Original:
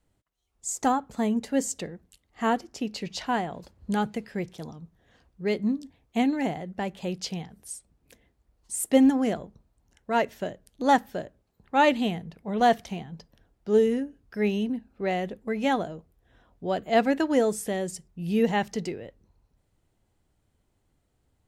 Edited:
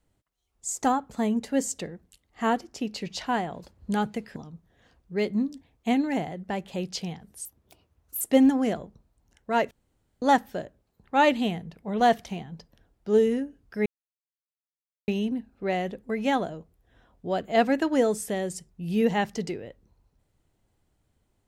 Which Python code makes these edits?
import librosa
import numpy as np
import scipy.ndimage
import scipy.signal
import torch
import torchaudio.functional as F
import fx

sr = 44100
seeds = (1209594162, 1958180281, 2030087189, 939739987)

y = fx.edit(x, sr, fx.cut(start_s=4.36, length_s=0.29),
    fx.speed_span(start_s=7.74, length_s=1.07, speed=1.41),
    fx.room_tone_fill(start_s=10.31, length_s=0.51),
    fx.insert_silence(at_s=14.46, length_s=1.22), tone=tone)